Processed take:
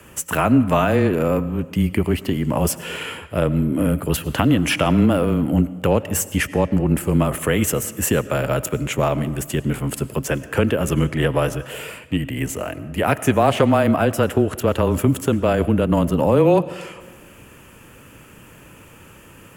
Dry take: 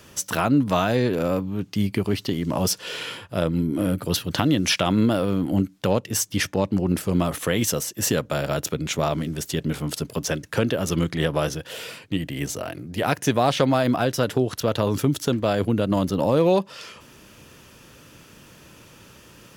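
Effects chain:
on a send at −16 dB: convolution reverb RT60 1.4 s, pre-delay 60 ms
on the sum: frequency shifter −17 Hz
flat-topped bell 4,600 Hz −12 dB 1 octave
level +4 dB

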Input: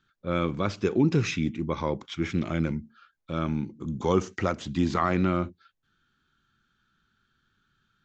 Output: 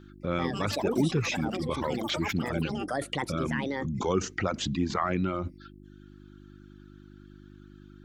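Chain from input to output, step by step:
delay with pitch and tempo change per echo 207 ms, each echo +7 semitones, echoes 3, each echo −6 dB
in parallel at +1 dB: compressor whose output falls as the input rises −37 dBFS, ratio −1
on the sum: reverb reduction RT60 0.87 s
hum with harmonics 50 Hz, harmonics 7, −47 dBFS −1 dB per octave
level −3.5 dB

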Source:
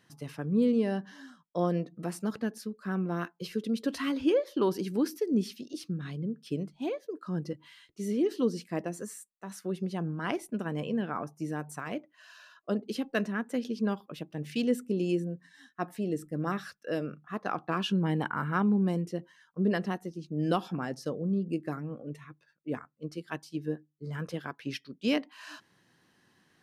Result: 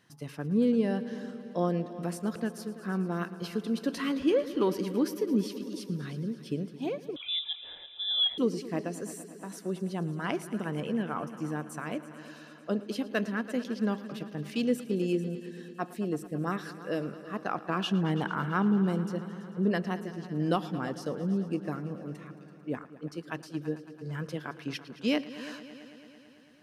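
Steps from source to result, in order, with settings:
on a send: echo machine with several playback heads 111 ms, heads all three, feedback 64%, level −19 dB
0:07.16–0:08.38: on the sum: voice inversion scrambler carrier 3,700 Hz

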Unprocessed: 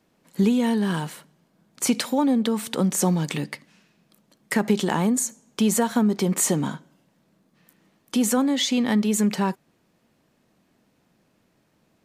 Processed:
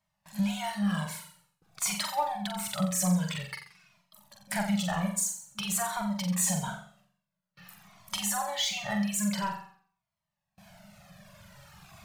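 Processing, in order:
camcorder AGC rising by 5.8 dB per second
brick-wall band-stop 210–550 Hz
power curve on the samples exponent 0.7
noise gate with hold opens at −38 dBFS
reverb reduction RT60 1.8 s
on a send: flutter between parallel walls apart 7.6 metres, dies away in 0.54 s
on the sum: flanger whose copies keep moving one way falling 0.49 Hz
level −4.5 dB

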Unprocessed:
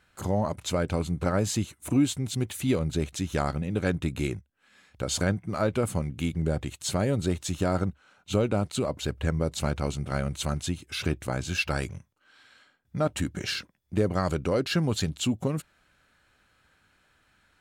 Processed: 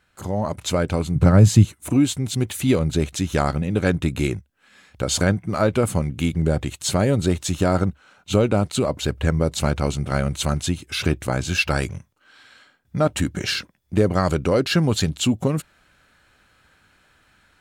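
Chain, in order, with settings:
0:01.15–0:01.71: parametric band 120 Hz +14 dB 1.7 octaves
automatic gain control gain up to 7 dB

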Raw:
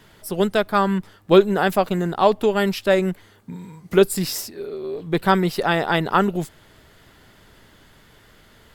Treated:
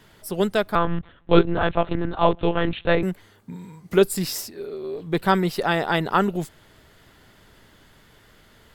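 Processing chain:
0:00.75–0:03.03: one-pitch LPC vocoder at 8 kHz 170 Hz
level −2 dB

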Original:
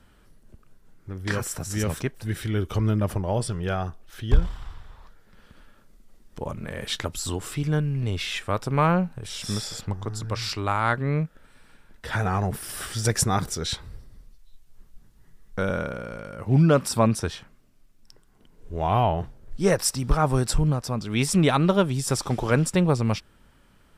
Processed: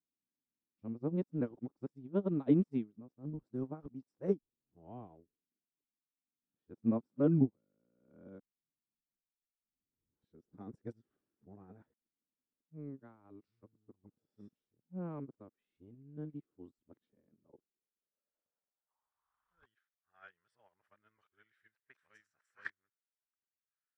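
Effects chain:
played backwards from end to start
band-pass filter sweep 280 Hz → 1,700 Hz, 0:17.28–0:19.90
expander for the loud parts 2.5 to 1, over −44 dBFS

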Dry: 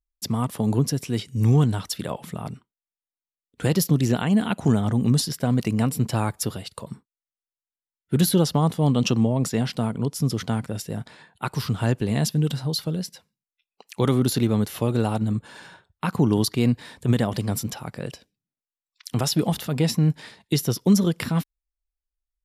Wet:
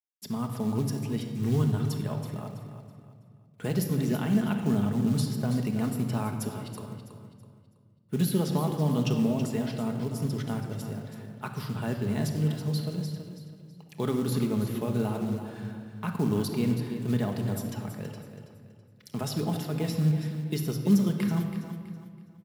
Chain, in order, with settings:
high-pass filter 88 Hz 12 dB per octave
parametric band 6,200 Hz −5.5 dB 1.9 octaves
log-companded quantiser 6 bits
on a send: repeating echo 327 ms, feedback 33%, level −10.5 dB
on the sum: rectangular room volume 2,300 cubic metres, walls mixed, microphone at 1.4 metres
level −8.5 dB

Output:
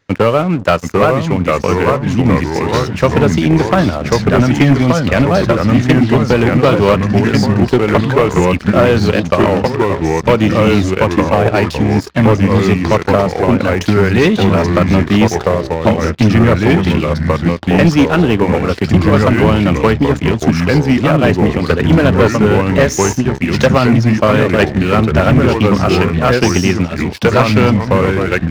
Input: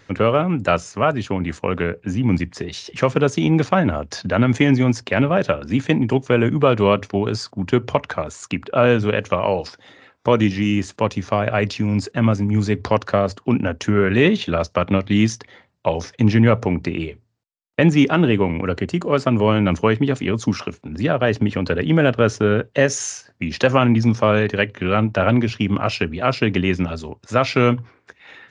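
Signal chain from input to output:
delay with pitch and tempo change per echo 720 ms, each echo −2 semitones, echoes 3
transient designer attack +5 dB, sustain −2 dB
leveller curve on the samples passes 3
level −5.5 dB

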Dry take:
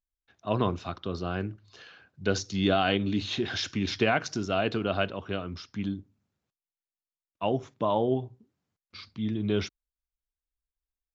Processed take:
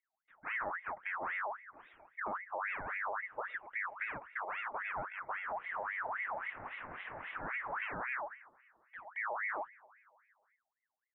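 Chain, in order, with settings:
0:05.48–0:07.87: linear delta modulator 16 kbit/s, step −28 dBFS
high-pass filter 62 Hz 24 dB per octave
low shelf with overshoot 160 Hz +8 dB, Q 1.5
downward compressor 3 to 1, threshold −42 dBFS, peak gain reduction 17 dB
soft clipping −31 dBFS, distortion −21 dB
Gaussian smoothing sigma 9.7 samples
repeating echo 232 ms, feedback 56%, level −23.5 dB
ring modulator whose carrier an LFO sweeps 1,400 Hz, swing 50%, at 3.7 Hz
level +5 dB

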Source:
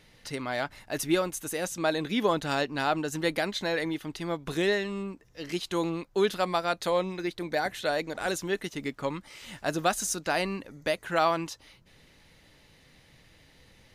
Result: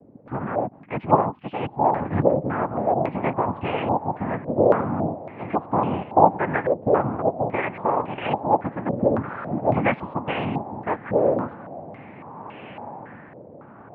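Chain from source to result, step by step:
0:08.92–0:10.13: converter with a step at zero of −29.5 dBFS
spectral tilt −3 dB per octave
in parallel at −2 dB: downward compressor, threshold −31 dBFS, peak gain reduction 14.5 dB
on the sum: cochlear-implant simulation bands 4
high-frequency loss of the air 470 metres
on a send: feedback delay with all-pass diffusion 1,551 ms, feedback 44%, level −15.5 dB
on the sum: low-pass on a step sequencer 3.6 Hz 540–2,800 Hz
level −1 dB

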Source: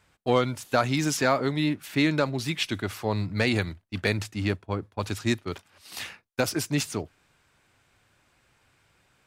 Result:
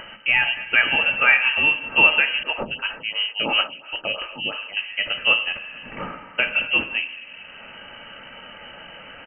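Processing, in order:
comb filter 2.9 ms, depth 37%
dense smooth reverb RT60 1.1 s, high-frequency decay 0.65×, DRR 7 dB
upward compression, threshold −29 dBFS
high-shelf EQ 2,300 Hz +8.5 dB
flanger 0.44 Hz, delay 5.8 ms, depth 4 ms, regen +80%
high-frequency loss of the air 210 metres
notch filter 2,000 Hz, Q 21
voice inversion scrambler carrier 3,000 Hz
0:02.43–0:04.77: phaser with staggered stages 2.9 Hz
level +9 dB

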